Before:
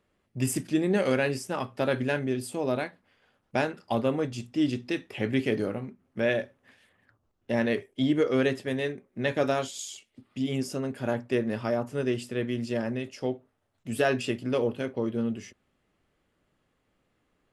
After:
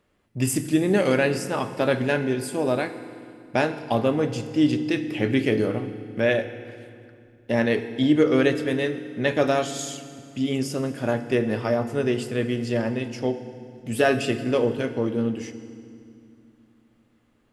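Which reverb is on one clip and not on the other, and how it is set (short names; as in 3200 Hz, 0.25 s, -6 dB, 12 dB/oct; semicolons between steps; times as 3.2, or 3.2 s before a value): FDN reverb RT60 2.3 s, low-frequency decay 1.6×, high-frequency decay 0.85×, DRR 9.5 dB; gain +4.5 dB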